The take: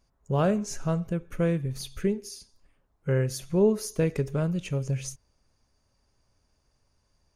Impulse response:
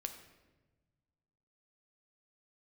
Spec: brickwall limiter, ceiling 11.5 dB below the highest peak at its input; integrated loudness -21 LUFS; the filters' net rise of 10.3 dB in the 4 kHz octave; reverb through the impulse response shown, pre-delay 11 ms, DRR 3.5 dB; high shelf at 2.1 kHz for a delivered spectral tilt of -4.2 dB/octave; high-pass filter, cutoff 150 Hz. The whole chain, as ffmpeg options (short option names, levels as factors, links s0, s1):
-filter_complex "[0:a]highpass=150,highshelf=f=2100:g=9,equalizer=f=4000:t=o:g=4,alimiter=limit=0.0841:level=0:latency=1,asplit=2[s0][s1];[1:a]atrim=start_sample=2205,adelay=11[s2];[s1][s2]afir=irnorm=-1:irlink=0,volume=0.841[s3];[s0][s3]amix=inputs=2:normalize=0,volume=2.82"